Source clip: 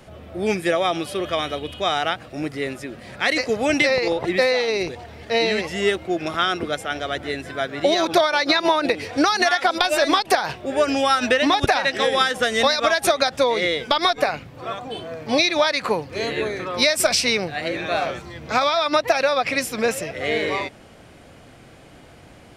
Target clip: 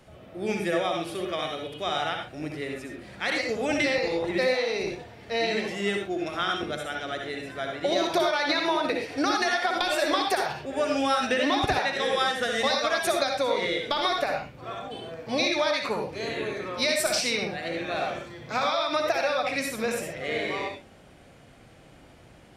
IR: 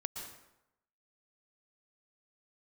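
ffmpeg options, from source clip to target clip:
-filter_complex "[1:a]atrim=start_sample=2205,afade=type=out:start_time=0.34:duration=0.01,atrim=end_sample=15435,asetrate=88200,aresample=44100[link_01];[0:a][link_01]afir=irnorm=-1:irlink=0"

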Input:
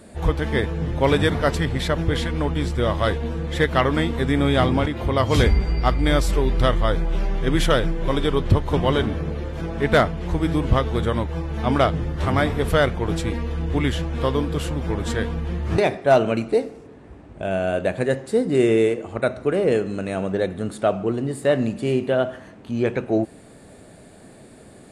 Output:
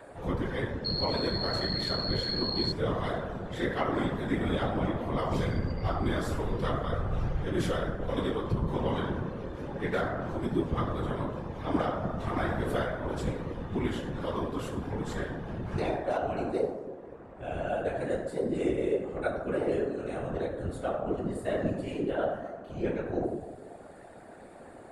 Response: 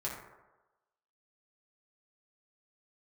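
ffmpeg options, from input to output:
-filter_complex "[1:a]atrim=start_sample=2205,asetrate=35721,aresample=44100[link_01];[0:a][link_01]afir=irnorm=-1:irlink=0,acrossover=split=440|2200[link_02][link_03][link_04];[link_03]acompressor=mode=upward:threshold=-27dB:ratio=2.5[link_05];[link_02][link_05][link_04]amix=inputs=3:normalize=0,asettb=1/sr,asplit=3[link_06][link_07][link_08];[link_06]atrim=end=0.854[link_09];[link_07]atrim=start=0.85:end=2.72,asetpts=PTS-STARTPTS,afade=type=in:duration=0.004:curve=qsin,afade=type=out:start_time=1.866:duration=0.004:curve=qsin,aeval=exprs='val(0)+0.141*sin(2*PI*4300*n/s)':channel_layout=same[link_10];[link_08]atrim=start=2.716[link_11];[link_09][link_10]acrossfade=duration=0.004:curve1=hsin:curve2=qsin[link_12];[link_12][link_11]acrossfade=duration=0.004:curve1=qsin:curve2=hsin,bandreject=frequency=50:width_type=h:width=6,bandreject=frequency=100:width_type=h:width=6,alimiter=limit=-6.5dB:level=0:latency=1:release=294,afftfilt=real='hypot(re,im)*cos(2*PI*random(0))':imag='hypot(re,im)*sin(2*PI*random(1))':win_size=512:overlap=0.75,volume=-7dB"

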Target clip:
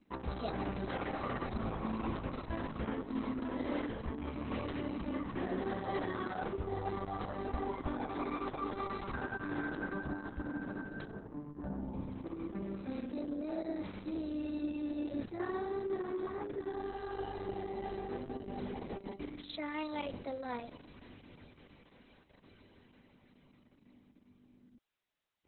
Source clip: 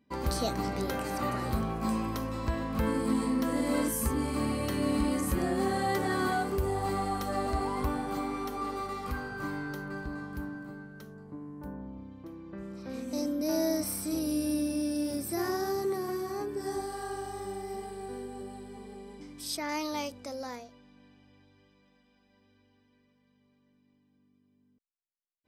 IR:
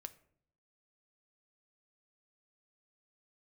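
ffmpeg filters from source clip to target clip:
-af "adynamicequalizer=threshold=0.00126:dfrequency=150:dqfactor=7.2:tfrequency=150:tqfactor=7.2:attack=5:release=100:ratio=0.375:range=4:mode=cutabove:tftype=bell,areverse,acompressor=threshold=-40dB:ratio=6,areverse,volume=6dB" -ar 48000 -c:a libopus -b:a 6k

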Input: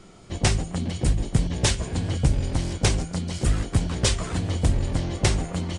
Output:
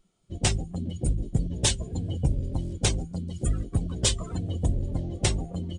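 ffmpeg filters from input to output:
ffmpeg -i in.wav -af "afftdn=noise_reduction=22:noise_floor=-30,aexciter=amount=2.2:drive=3.5:freq=2900,volume=-4dB" out.wav

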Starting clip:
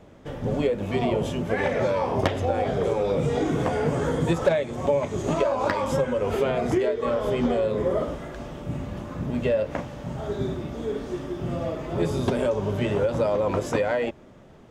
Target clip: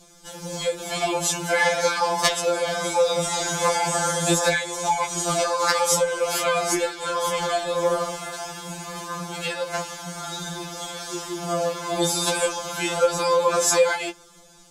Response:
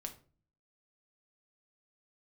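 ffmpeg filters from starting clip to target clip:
-filter_complex "[0:a]bandreject=frequency=1900:width=25,acrossover=split=360|540|2500[link_01][link_02][link_03][link_04];[link_03]dynaudnorm=framelen=220:gausssize=7:maxgain=10dB[link_05];[link_01][link_02][link_05][link_04]amix=inputs=4:normalize=0,equalizer=frequency=210:width=0.31:gain=-8.5,aexciter=amount=6.2:drive=2.1:freq=3900,lowpass=9300,highshelf=frequency=5800:gain=11,afftfilt=real='re*2.83*eq(mod(b,8),0)':imag='im*2.83*eq(mod(b,8),0)':win_size=2048:overlap=0.75,volume=3.5dB"

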